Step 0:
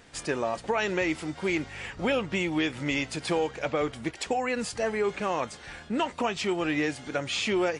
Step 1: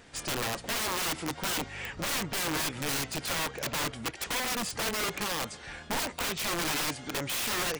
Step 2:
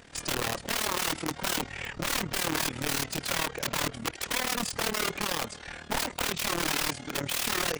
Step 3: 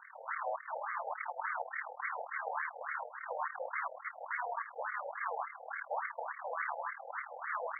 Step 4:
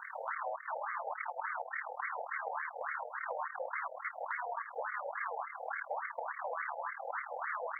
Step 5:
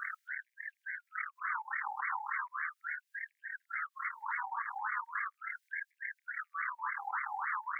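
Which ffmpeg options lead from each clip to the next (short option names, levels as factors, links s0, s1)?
-af "aeval=exprs='(mod(20*val(0)+1,2)-1)/20':c=same"
-af "tremolo=f=38:d=0.824,volume=1.78"
-af "aeval=exprs='0.0335*(abs(mod(val(0)/0.0335+3,4)-2)-1)':c=same,afreqshift=-46,afftfilt=real='re*between(b*sr/1024,620*pow(1600/620,0.5+0.5*sin(2*PI*3.5*pts/sr))/1.41,620*pow(1600/620,0.5+0.5*sin(2*PI*3.5*pts/sr))*1.41)':imag='im*between(b*sr/1024,620*pow(1600/620,0.5+0.5*sin(2*PI*3.5*pts/sr))/1.41,620*pow(1600/620,0.5+0.5*sin(2*PI*3.5*pts/sr))*1.41)':win_size=1024:overlap=0.75,volume=1.78"
-af "acompressor=threshold=0.00562:ratio=5,volume=2.66"
-af "lowshelf=f=410:g=-10.5,alimiter=level_in=3.55:limit=0.0631:level=0:latency=1:release=67,volume=0.282,afftfilt=real='re*gte(b*sr/1024,740*pow(1600/740,0.5+0.5*sin(2*PI*0.38*pts/sr)))':imag='im*gte(b*sr/1024,740*pow(1600/740,0.5+0.5*sin(2*PI*0.38*pts/sr)))':win_size=1024:overlap=0.75,volume=2.66"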